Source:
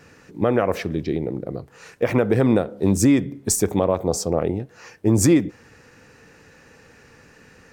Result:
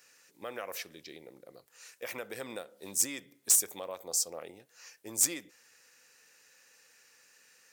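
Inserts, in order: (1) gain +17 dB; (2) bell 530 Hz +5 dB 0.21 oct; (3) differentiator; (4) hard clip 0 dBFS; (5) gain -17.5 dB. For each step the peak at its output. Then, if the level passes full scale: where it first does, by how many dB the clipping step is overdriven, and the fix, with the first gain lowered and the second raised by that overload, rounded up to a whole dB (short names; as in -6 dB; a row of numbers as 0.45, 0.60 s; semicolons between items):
+10.0, +11.5, +9.5, 0.0, -17.5 dBFS; step 1, 9.5 dB; step 1 +7 dB, step 5 -7.5 dB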